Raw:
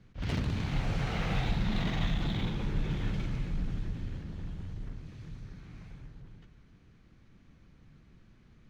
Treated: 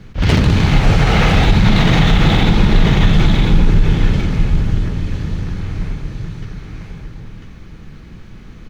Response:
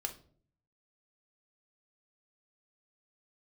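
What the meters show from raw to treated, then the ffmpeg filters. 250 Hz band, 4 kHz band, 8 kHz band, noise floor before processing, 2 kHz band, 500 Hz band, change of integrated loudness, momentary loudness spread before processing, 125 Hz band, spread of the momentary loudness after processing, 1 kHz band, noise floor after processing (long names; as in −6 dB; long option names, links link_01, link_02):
+20.0 dB, +20.5 dB, can't be measured, −60 dBFS, +21.0 dB, +21.0 dB, +19.5 dB, 18 LU, +20.0 dB, 18 LU, +21.0 dB, −36 dBFS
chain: -filter_complex "[0:a]aecho=1:1:997:0.631,asplit=2[link_01][link_02];[1:a]atrim=start_sample=2205[link_03];[link_02][link_03]afir=irnorm=-1:irlink=0,volume=-6dB[link_04];[link_01][link_04]amix=inputs=2:normalize=0,alimiter=level_in=18.5dB:limit=-1dB:release=50:level=0:latency=1,volume=-1dB"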